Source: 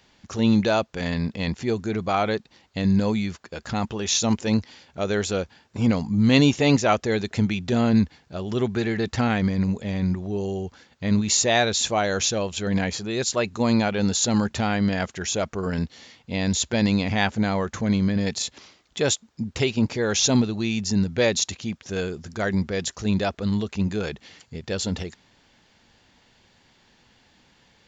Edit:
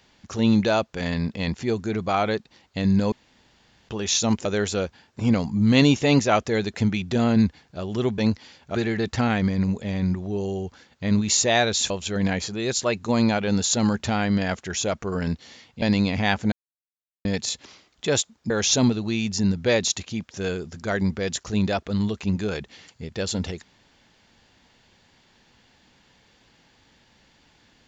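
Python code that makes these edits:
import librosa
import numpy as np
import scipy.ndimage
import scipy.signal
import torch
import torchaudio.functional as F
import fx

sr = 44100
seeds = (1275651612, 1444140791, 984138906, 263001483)

y = fx.edit(x, sr, fx.room_tone_fill(start_s=3.12, length_s=0.77),
    fx.move(start_s=4.45, length_s=0.57, to_s=8.75),
    fx.cut(start_s=11.9, length_s=0.51),
    fx.cut(start_s=16.33, length_s=0.42),
    fx.silence(start_s=17.45, length_s=0.73),
    fx.cut(start_s=19.43, length_s=0.59), tone=tone)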